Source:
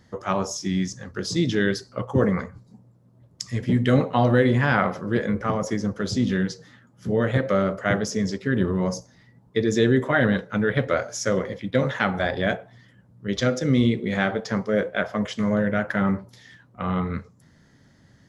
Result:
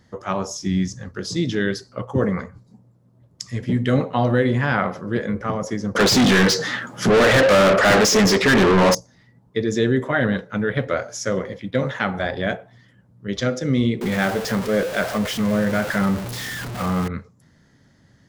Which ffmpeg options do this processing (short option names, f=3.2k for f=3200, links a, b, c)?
-filter_complex "[0:a]asettb=1/sr,asplit=3[a][b][c];[a]atrim=end=0.634[d];[b]atrim=start=0.63:end=1.09,asetpts=PTS-STARTPTS,afade=t=in:d=0.004:c=qsin,afade=t=out:st=0.456:d=0.004:c=qsin,lowshelf=f=120:g=11.5[e];[c]atrim=start=1.086[f];[d][e]acrossfade=d=0.004:c1=hsin:c2=qsin[g];[g][f]acrossfade=d=0.004:c1=qsin:c2=hsin,asettb=1/sr,asplit=3[h][i][j];[h]atrim=end=5.954[k];[i]atrim=start=5.95:end=8.95,asetpts=PTS-STARTPTS,afade=t=in:d=0.004:c=qsin,afade=t=out:st=2.996:d=0.004:c=qsin,asplit=2[l][m];[m]highpass=f=720:p=1,volume=35dB,asoftclip=type=tanh:threshold=-7.5dB[n];[l][n]amix=inputs=2:normalize=0,lowpass=f=5k:p=1,volume=-6dB[o];[j]atrim=start=8.946[p];[k][o]acrossfade=d=0.004:c1=hsin:c2=qsin[q];[q][p]acrossfade=d=0.004:c1=qsin:c2=hsin,asettb=1/sr,asplit=3[r][s][t];[r]atrim=end=14.014[u];[s]atrim=start=14.01:end=17.08,asetpts=PTS-STARTPTS,afade=t=in:d=0.004:c=qsin,afade=t=out:st=3.066:d=0.004:c=qsin,aeval=exprs='val(0)+0.5*0.0596*sgn(val(0))':c=same[v];[t]atrim=start=17.076[w];[u][v]acrossfade=d=0.004:c1=hsin:c2=qsin[x];[x][w]acrossfade=d=0.004:c1=qsin:c2=hsin"